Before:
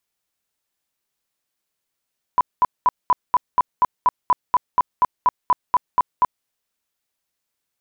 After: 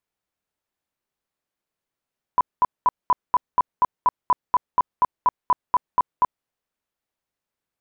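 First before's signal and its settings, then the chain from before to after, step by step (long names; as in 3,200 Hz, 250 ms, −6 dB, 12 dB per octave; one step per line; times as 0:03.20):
tone bursts 996 Hz, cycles 28, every 0.24 s, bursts 17, −11 dBFS
high-shelf EQ 2,500 Hz −11.5 dB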